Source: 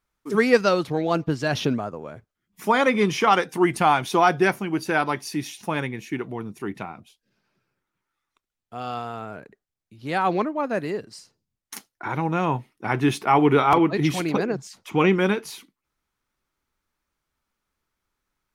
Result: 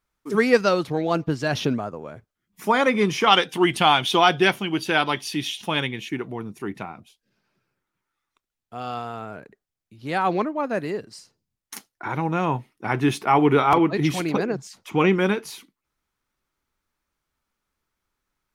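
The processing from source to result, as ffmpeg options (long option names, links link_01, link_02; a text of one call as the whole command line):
ffmpeg -i in.wav -filter_complex "[0:a]asettb=1/sr,asplit=3[link_01][link_02][link_03];[link_01]atrim=end=3.264[link_04];[link_02]atrim=start=3.26:end=6.09,asetpts=PTS-STARTPTS,afade=type=in:duration=0.004:curve=qsin,afade=type=out:start_time=2.826:duration=0.004:curve=qsin,equalizer=frequency=3200:width_type=o:width=0.59:gain=15[link_05];[link_03]atrim=start=6.086[link_06];[link_04][link_05]acrossfade=duration=0.004:curve1=hsin:curve2=qsin[link_07];[link_07][link_06]acrossfade=duration=0.004:curve1=qsin:curve2=hsin" out.wav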